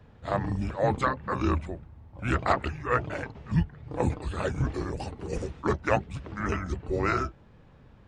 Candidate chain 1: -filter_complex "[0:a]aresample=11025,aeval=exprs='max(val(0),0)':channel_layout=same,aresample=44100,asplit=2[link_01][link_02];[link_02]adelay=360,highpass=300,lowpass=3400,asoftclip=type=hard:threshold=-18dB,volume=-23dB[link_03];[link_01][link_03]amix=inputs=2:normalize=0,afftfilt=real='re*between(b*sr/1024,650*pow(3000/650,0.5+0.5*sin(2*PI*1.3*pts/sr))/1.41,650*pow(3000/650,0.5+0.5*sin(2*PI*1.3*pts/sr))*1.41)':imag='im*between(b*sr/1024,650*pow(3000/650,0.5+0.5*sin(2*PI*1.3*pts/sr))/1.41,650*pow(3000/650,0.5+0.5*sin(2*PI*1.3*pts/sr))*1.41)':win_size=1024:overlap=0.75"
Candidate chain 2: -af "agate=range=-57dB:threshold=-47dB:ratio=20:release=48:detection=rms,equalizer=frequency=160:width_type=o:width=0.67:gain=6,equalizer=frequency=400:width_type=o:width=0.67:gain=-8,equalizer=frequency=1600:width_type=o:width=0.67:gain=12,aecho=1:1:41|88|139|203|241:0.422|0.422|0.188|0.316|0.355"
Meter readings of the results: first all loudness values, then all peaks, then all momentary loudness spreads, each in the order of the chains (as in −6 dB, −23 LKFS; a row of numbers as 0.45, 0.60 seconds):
−42.5, −24.5 LKFS; −18.0, −3.5 dBFS; 15, 10 LU